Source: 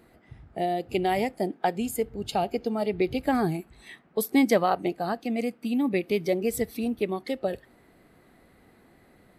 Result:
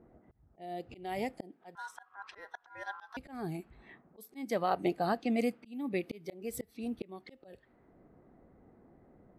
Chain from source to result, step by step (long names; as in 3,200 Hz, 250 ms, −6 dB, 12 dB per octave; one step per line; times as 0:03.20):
0:01.75–0:03.17: ring modulation 1,200 Hz
low-pass that shuts in the quiet parts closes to 780 Hz, open at −24.5 dBFS
volume swells 585 ms
level −2 dB